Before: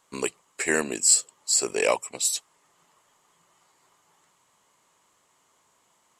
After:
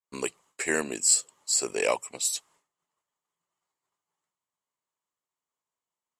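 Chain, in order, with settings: expander -51 dBFS; gain -3 dB

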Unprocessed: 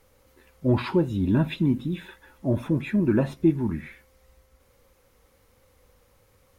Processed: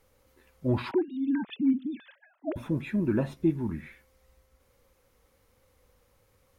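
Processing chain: 0.91–2.56 sine-wave speech; gain -5 dB

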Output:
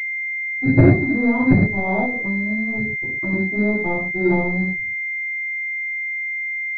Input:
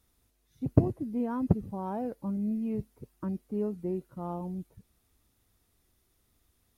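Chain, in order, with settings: sample leveller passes 2; 3.84–4.3 reverse; reverb, pre-delay 3 ms, DRR -10.5 dB; 2.05–3.33 compressor 4:1, threshold -19 dBFS, peak gain reduction 9 dB; pulse-width modulation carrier 2100 Hz; gain -5 dB

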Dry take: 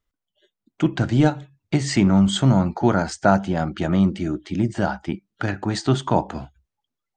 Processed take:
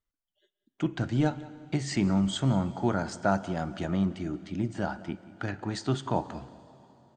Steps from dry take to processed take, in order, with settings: 3.32–3.85 high shelf 7300 Hz +9.5 dB; outdoor echo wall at 31 m, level -19 dB; plate-style reverb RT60 3.5 s, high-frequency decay 0.95×, DRR 16.5 dB; gain -9 dB

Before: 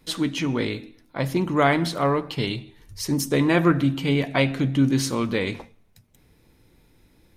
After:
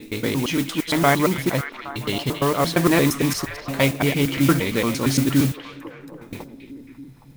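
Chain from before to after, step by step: slices in reverse order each 0.115 s, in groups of 8; modulation noise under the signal 14 dB; delay with a stepping band-pass 0.272 s, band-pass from 2800 Hz, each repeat -0.7 oct, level -6.5 dB; gain +2 dB

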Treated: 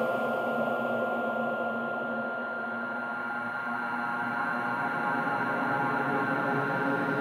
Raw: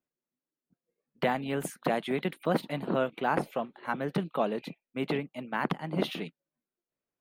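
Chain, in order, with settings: Paulstretch 17×, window 0.50 s, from 3.58; whine 1400 Hz -37 dBFS; gain +3.5 dB

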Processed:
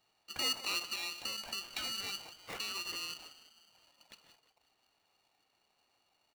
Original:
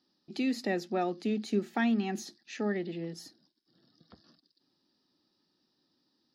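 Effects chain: HPF 180 Hz 12 dB/oct; high shelf 2900 Hz +9.5 dB; limiter -26.5 dBFS, peak gain reduction 8.5 dB; 0.82–3.1 compressor, threshold -37 dBFS, peak gain reduction 7.5 dB; frequency-shifting echo 0.176 s, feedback 52%, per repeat -36 Hz, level -15 dB; reverb RT60 0.50 s, pre-delay 31 ms, DRR 16.5 dB; inverted band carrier 3900 Hz; polarity switched at an audio rate 780 Hz

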